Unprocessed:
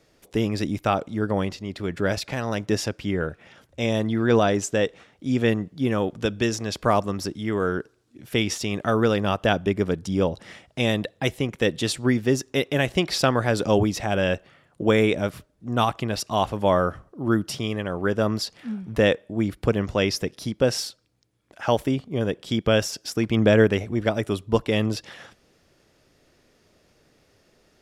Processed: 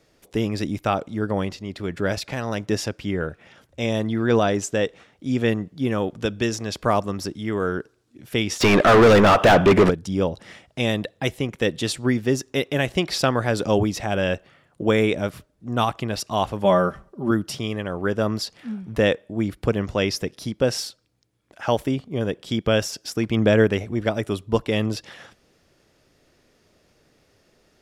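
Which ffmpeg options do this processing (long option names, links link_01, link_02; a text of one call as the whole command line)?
ffmpeg -i in.wav -filter_complex "[0:a]asplit=3[link_01][link_02][link_03];[link_01]afade=type=out:start_time=8.6:duration=0.02[link_04];[link_02]asplit=2[link_05][link_06];[link_06]highpass=frequency=720:poles=1,volume=36dB,asoftclip=type=tanh:threshold=-5dB[link_07];[link_05][link_07]amix=inputs=2:normalize=0,lowpass=frequency=1600:poles=1,volume=-6dB,afade=type=in:start_time=8.6:duration=0.02,afade=type=out:start_time=9.89:duration=0.02[link_08];[link_03]afade=type=in:start_time=9.89:duration=0.02[link_09];[link_04][link_08][link_09]amix=inputs=3:normalize=0,asettb=1/sr,asplit=3[link_10][link_11][link_12];[link_10]atrim=end=16.644[link_13];[link_11]atrim=start=16.64:end=17.31,asetpts=PTS-STARTPTS,afade=type=in:duration=0.004:curve=qsin,afade=type=out:start_time=0.666:duration=0.004:curve=qsin,aecho=1:1:5.1:0.73,atrim=end_sample=29547[link_14];[link_12]atrim=start=17.306[link_15];[link_13][link_14]acrossfade=duration=0.004:curve1=hsin:curve2=qsin[link_16];[link_16][link_15]acrossfade=duration=0.004:curve1=qsin:curve2=hsin" out.wav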